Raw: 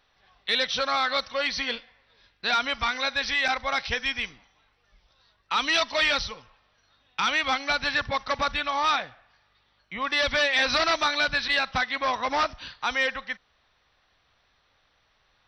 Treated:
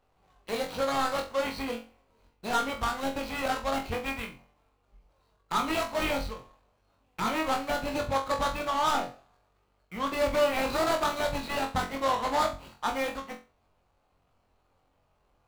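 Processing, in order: median filter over 25 samples; on a send: flutter echo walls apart 3.8 m, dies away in 0.3 s

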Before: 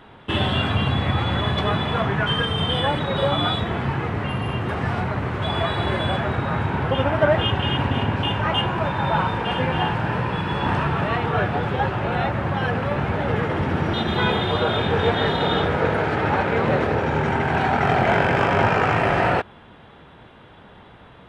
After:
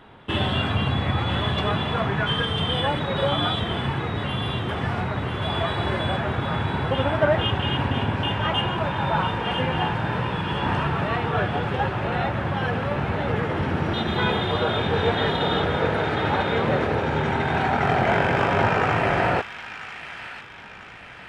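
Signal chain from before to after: feedback echo behind a high-pass 996 ms, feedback 48%, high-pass 2 kHz, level -6.5 dB; trim -2 dB

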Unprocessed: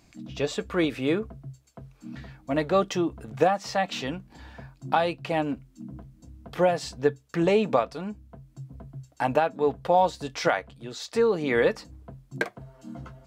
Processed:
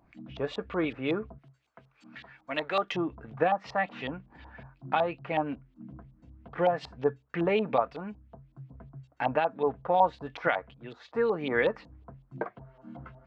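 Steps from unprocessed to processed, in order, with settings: LFO low-pass saw up 5.4 Hz 810–3500 Hz; 1.38–2.92 s: tilt EQ +4 dB/octave; wow and flutter 20 cents; trim -5.5 dB

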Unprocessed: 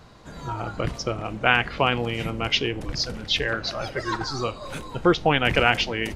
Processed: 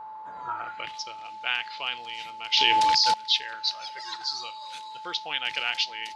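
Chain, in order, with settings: band-pass sweep 1 kHz -> 4.3 kHz, 0.39–1.06 s; whistle 870 Hz -42 dBFS; 2.57–3.14 s: level flattener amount 100%; trim +4 dB

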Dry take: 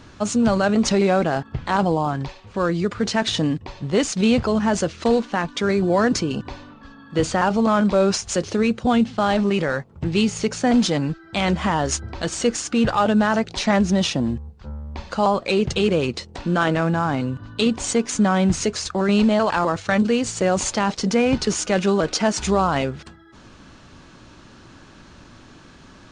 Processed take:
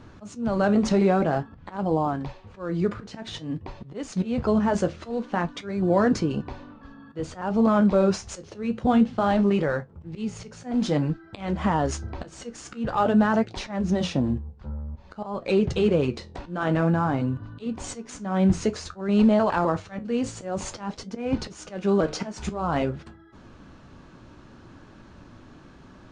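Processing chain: treble shelf 2 kHz -11 dB; slow attack 261 ms; flange 0.52 Hz, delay 8.6 ms, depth 8.2 ms, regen -62%; trim +3 dB

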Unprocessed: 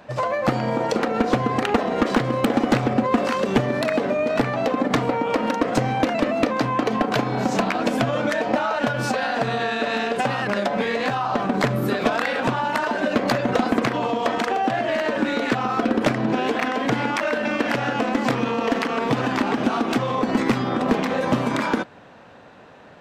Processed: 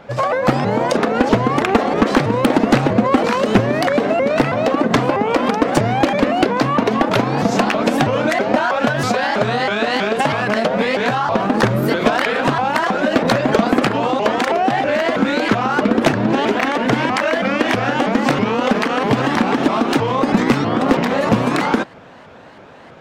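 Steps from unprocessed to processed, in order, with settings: vibrato with a chosen wave saw up 3.1 Hz, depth 250 cents; trim +5.5 dB

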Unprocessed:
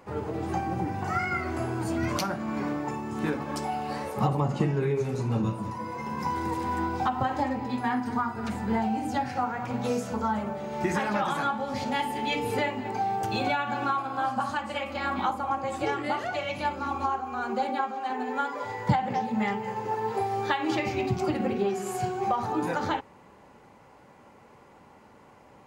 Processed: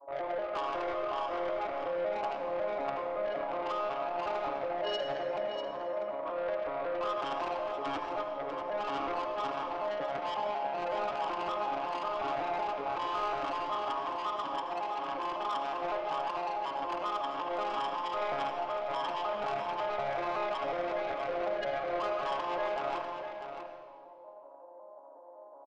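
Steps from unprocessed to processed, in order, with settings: vocoder on a broken chord major triad, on C#3, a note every 185 ms; Chebyshev band-pass 310–800 Hz, order 4; in parallel at +2 dB: compressor with a negative ratio -36 dBFS, ratio -0.5; on the sum: saturation -32 dBFS, distortion -10 dB; formant shift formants +6 st; delay 645 ms -8.5 dB; on a send at -4.5 dB: reverberation RT60 1.7 s, pre-delay 70 ms

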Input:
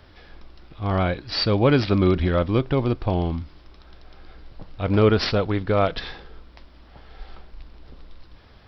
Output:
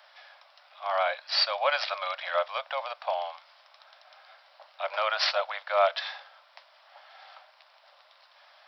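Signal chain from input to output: steep high-pass 570 Hz 96 dB/octave

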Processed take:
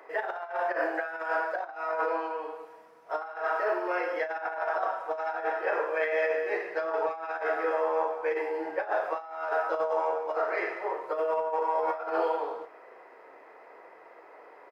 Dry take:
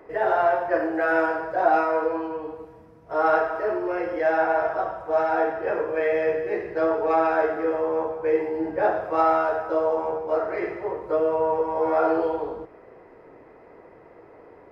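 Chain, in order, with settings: high-pass 720 Hz 12 dB/octave; compressor with a negative ratio -29 dBFS, ratio -0.5; doubling 36 ms -12.5 dB

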